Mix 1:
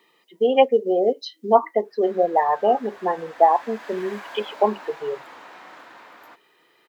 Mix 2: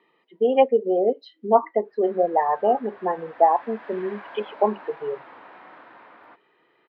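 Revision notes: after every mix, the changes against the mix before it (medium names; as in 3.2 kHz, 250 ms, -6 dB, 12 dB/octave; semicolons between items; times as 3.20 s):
master: add distance through air 430 m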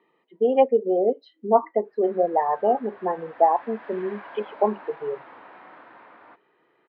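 speech: add treble shelf 2 kHz -9 dB; background: add distance through air 98 m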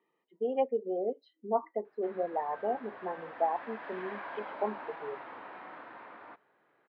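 speech -11.5 dB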